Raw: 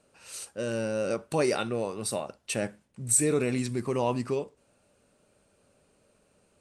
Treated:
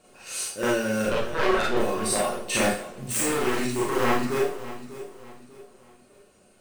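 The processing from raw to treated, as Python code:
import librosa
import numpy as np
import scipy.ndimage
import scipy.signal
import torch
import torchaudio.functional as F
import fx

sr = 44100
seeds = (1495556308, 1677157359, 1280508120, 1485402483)

p1 = fx.block_float(x, sr, bits=5)
p2 = fx.comb_fb(p1, sr, f0_hz=360.0, decay_s=0.2, harmonics='all', damping=0.0, mix_pct=80)
p3 = fx.lpc_vocoder(p2, sr, seeds[0], excitation='pitch_kept', order=10, at=(1.05, 1.77))
p4 = fx.level_steps(p3, sr, step_db=20)
p5 = p3 + (p4 * librosa.db_to_amplitude(-1.5))
p6 = 10.0 ** (-31.0 / 20.0) * (np.abs((p5 / 10.0 ** (-31.0 / 20.0) + 3.0) % 4.0 - 2.0) - 1.0)
p7 = fx.rider(p6, sr, range_db=5, speed_s=0.5)
p8 = p7 + fx.echo_feedback(p7, sr, ms=594, feedback_pct=36, wet_db=-14.0, dry=0)
p9 = fx.rev_schroeder(p8, sr, rt60_s=0.37, comb_ms=29, drr_db=-5.0)
p10 = fx.dynamic_eq(p9, sr, hz=1600.0, q=1.4, threshold_db=-49.0, ratio=4.0, max_db=5)
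p11 = fx.echo_warbled(p10, sr, ms=88, feedback_pct=61, rate_hz=2.8, cents=197, wet_db=-20)
y = p11 * librosa.db_to_amplitude(7.5)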